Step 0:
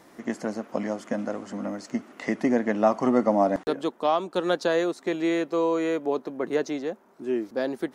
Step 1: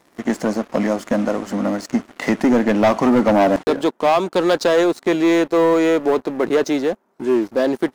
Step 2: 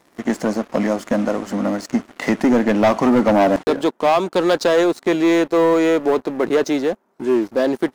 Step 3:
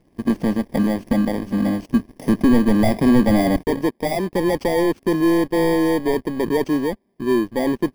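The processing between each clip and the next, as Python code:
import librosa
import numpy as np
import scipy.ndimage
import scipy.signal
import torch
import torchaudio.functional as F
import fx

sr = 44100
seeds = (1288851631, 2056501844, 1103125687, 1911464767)

y1 = fx.leveller(x, sr, passes=3)
y2 = y1
y3 = fx.bit_reversed(y2, sr, seeds[0], block=32)
y3 = fx.riaa(y3, sr, side='playback')
y3 = y3 * librosa.db_to_amplitude(-4.5)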